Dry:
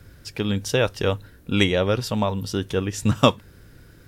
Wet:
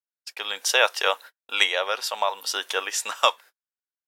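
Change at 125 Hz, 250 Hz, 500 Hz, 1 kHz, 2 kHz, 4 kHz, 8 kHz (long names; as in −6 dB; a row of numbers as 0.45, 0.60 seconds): below −40 dB, −27.0 dB, −5.5 dB, +2.5 dB, +4.5 dB, +4.0 dB, +6.0 dB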